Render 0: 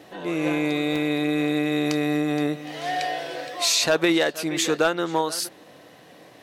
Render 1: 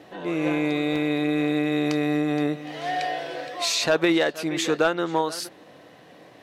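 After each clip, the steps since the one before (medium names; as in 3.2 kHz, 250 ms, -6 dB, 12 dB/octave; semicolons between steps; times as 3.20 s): treble shelf 5.6 kHz -9 dB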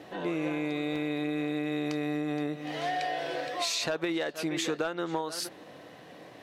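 compression, threshold -28 dBFS, peak gain reduction 11.5 dB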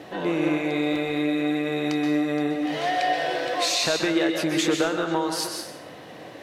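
plate-style reverb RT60 0.71 s, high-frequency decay 0.9×, pre-delay 115 ms, DRR 3.5 dB; trim +6 dB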